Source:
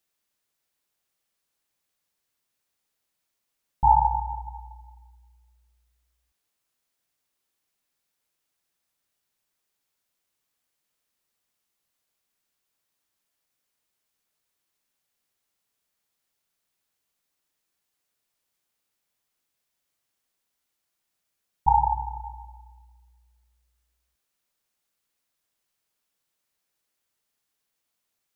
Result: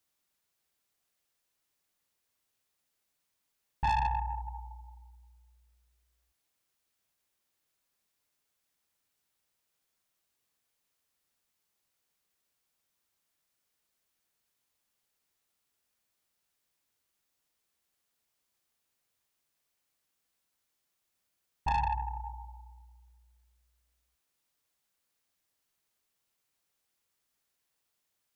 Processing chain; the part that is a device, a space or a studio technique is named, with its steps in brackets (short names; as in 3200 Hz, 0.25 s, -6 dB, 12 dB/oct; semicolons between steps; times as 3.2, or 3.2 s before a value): open-reel tape (soft clip -21 dBFS, distortion -7 dB; bell 76 Hz +4.5 dB 0.77 oct; white noise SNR 40 dB); gain -4 dB